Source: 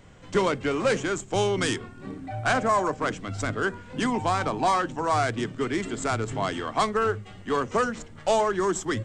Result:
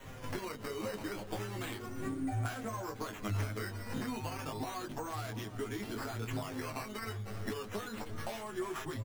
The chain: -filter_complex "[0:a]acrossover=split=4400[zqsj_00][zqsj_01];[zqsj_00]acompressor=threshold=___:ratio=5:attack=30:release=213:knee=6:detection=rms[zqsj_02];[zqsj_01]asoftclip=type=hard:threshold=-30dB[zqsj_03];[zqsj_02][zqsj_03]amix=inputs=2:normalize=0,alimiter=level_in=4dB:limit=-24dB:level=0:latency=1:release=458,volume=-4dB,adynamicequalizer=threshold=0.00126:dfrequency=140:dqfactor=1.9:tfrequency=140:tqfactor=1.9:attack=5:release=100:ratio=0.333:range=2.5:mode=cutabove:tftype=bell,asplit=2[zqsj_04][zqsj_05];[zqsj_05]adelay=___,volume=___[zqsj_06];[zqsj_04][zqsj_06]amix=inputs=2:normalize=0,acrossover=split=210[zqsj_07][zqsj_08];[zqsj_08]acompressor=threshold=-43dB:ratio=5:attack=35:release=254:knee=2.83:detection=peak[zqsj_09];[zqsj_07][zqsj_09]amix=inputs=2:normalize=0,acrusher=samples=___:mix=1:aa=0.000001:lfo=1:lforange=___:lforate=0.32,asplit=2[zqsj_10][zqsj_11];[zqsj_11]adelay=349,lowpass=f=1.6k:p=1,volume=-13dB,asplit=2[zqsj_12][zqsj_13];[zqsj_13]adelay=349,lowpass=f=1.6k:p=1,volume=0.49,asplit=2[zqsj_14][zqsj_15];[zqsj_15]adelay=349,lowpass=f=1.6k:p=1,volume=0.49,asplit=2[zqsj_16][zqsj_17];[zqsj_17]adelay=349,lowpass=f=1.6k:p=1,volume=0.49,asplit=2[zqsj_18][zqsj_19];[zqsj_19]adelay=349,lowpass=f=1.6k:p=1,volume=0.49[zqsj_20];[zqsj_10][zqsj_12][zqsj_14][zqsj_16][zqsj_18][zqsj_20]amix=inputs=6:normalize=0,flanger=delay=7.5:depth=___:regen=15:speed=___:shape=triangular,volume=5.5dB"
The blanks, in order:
-35dB, 19, -3dB, 9, 9, 2.3, 0.45